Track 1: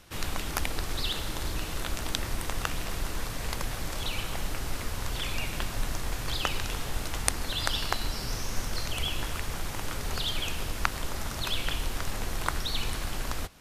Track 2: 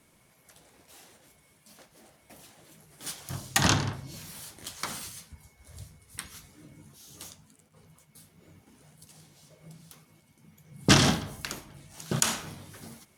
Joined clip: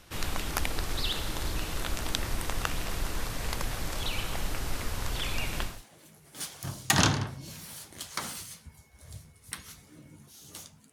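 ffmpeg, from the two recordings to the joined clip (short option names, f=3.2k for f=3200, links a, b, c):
-filter_complex "[0:a]apad=whole_dur=10.92,atrim=end=10.92,atrim=end=5.82,asetpts=PTS-STARTPTS[a];[1:a]atrim=start=2.26:end=7.58,asetpts=PTS-STARTPTS[b];[a][b]acrossfade=d=0.22:c1=tri:c2=tri"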